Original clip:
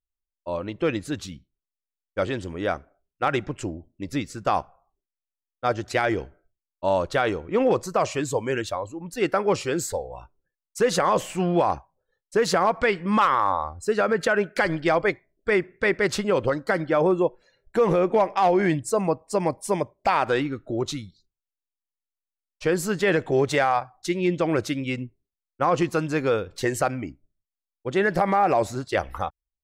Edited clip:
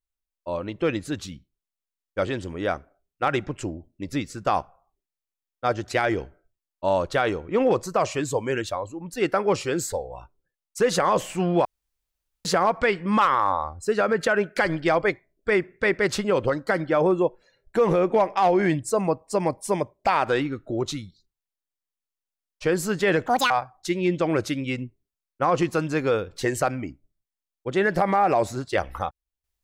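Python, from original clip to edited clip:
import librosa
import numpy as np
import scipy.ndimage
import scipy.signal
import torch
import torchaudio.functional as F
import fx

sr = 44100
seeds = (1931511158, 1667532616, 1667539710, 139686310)

y = fx.edit(x, sr, fx.room_tone_fill(start_s=11.65, length_s=0.8),
    fx.speed_span(start_s=23.27, length_s=0.43, speed=1.84), tone=tone)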